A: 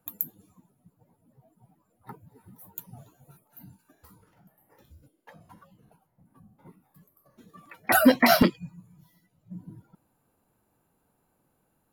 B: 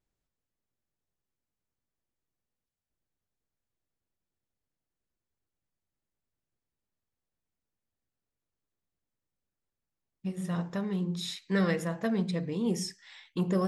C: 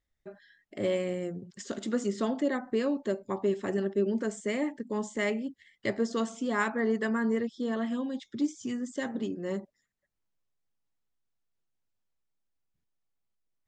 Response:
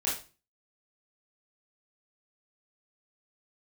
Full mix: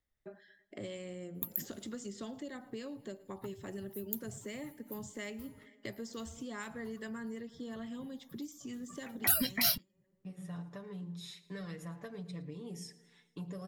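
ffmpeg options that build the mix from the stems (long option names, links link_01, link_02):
-filter_complex "[0:a]adelay=1350,volume=1.5dB[link_01];[1:a]agate=range=-9dB:threshold=-50dB:ratio=16:detection=peak,aecho=1:1:6.9:0.71,volume=-10.5dB,asplit=2[link_02][link_03];[link_03]volume=-20dB[link_04];[2:a]lowshelf=frequency=110:gain=-2.5,volume=-2dB,asplit=3[link_05][link_06][link_07];[link_06]volume=-22.5dB[link_08];[link_07]apad=whole_len=585499[link_09];[link_01][link_09]sidechaingate=range=-32dB:threshold=-55dB:ratio=16:detection=peak[link_10];[link_04][link_08]amix=inputs=2:normalize=0,aecho=0:1:111|222|333|444|555|666|777|888:1|0.56|0.314|0.176|0.0983|0.0551|0.0308|0.0173[link_11];[link_10][link_02][link_05][link_11]amix=inputs=4:normalize=0,equalizer=frequency=5200:width_type=o:width=2.1:gain=-3.5,acrossover=split=130|3000[link_12][link_13][link_14];[link_13]acompressor=threshold=-43dB:ratio=6[link_15];[link_12][link_15][link_14]amix=inputs=3:normalize=0"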